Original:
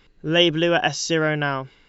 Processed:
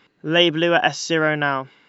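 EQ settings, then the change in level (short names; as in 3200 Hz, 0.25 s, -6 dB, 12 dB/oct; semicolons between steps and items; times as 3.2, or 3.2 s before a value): HPF 220 Hz 12 dB/oct; bell 420 Hz -5.5 dB 1.2 oct; high shelf 3100 Hz -10 dB; +6.0 dB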